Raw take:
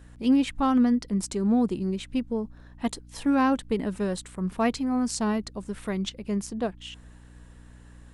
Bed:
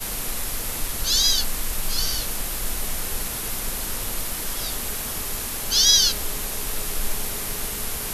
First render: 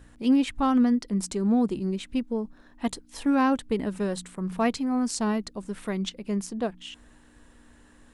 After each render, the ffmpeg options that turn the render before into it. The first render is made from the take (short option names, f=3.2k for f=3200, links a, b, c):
-af "bandreject=f=60:t=h:w=4,bandreject=f=120:t=h:w=4,bandreject=f=180:t=h:w=4"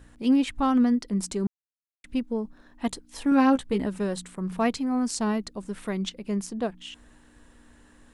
-filter_complex "[0:a]asettb=1/sr,asplit=3[a][b][c];[a]atrim=end=3.304[d];[b]atrim=start=3.3:end=3.87,asetpts=PTS-STARTPTS,afade=t=in:d=0.004:c=qsin,afade=t=out:st=0.566:d=0.004:c=qsin,asplit=2[e][f];[f]adelay=15,volume=-5dB[g];[e][g]amix=inputs=2:normalize=0,atrim=end_sample=25137[h];[c]atrim=start=3.866[i];[d][h]acrossfade=d=0.004:c1=hsin:c2=qsin[j];[j][i]acrossfade=d=0.004:c1=qsin:c2=hsin,asplit=3[k][l][m];[k]atrim=end=1.47,asetpts=PTS-STARTPTS,afade=t=out:st=1.466:d=0.004:c=hsin[n];[l]atrim=start=1.47:end=2.04,asetpts=PTS-STARTPTS,volume=0[o];[m]atrim=start=2.04,asetpts=PTS-STARTPTS,afade=t=in:d=0.004:c=hsin[p];[n][o][p]concat=n=3:v=0:a=1"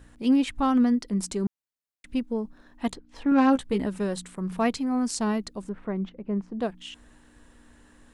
-filter_complex "[0:a]asettb=1/sr,asplit=3[a][b][c];[a]atrim=end=2.934[d];[b]atrim=start=2.93:end=3.48,asetpts=PTS-STARTPTS,afade=t=in:d=0.004:c=qsin,afade=t=out:st=0.546:d=0.004:c=qsin,adynamicsmooth=sensitivity=2:basefreq=3.1k[e];[c]atrim=start=3.476[f];[d][e]acrossfade=d=0.004:c1=hsin:c2=qsin[g];[g][f]acrossfade=d=0.004:c1=qsin:c2=hsin,asettb=1/sr,asplit=3[h][i][j];[h]atrim=end=5.694[k];[i]atrim=start=5.69:end=6.6,asetpts=PTS-STARTPTS,afade=t=in:d=0.004:c=qsin,afade=t=out:st=0.906:d=0.004:c=qsin,lowpass=1.3k[l];[j]atrim=start=6.596[m];[k][l]acrossfade=d=0.004:c1=hsin:c2=qsin[n];[n][m]acrossfade=d=0.004:c1=qsin:c2=hsin"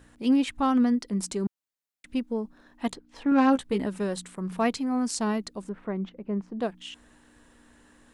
-af "lowshelf=f=98:g=-8.5"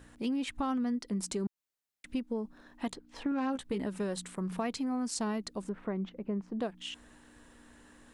-af "alimiter=limit=-19dB:level=0:latency=1:release=14,acompressor=threshold=-32dB:ratio=3"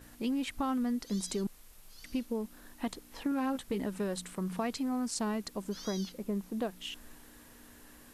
-filter_complex "[1:a]volume=-30dB[a];[0:a][a]amix=inputs=2:normalize=0"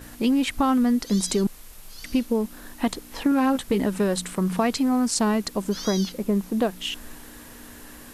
-af "volume=11.5dB"